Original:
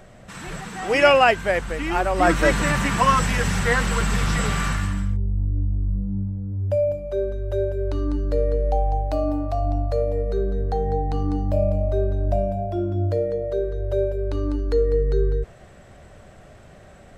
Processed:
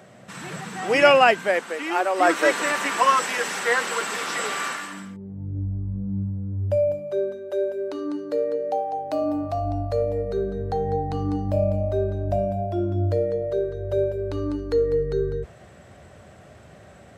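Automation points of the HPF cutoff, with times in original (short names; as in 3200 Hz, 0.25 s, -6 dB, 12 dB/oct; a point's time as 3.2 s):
HPF 24 dB/oct
1.08 s 120 Hz
1.79 s 320 Hz
4.85 s 320 Hz
5.66 s 77 Hz
6.61 s 77 Hz
7.52 s 240 Hz
8.92 s 240 Hz
9.66 s 69 Hz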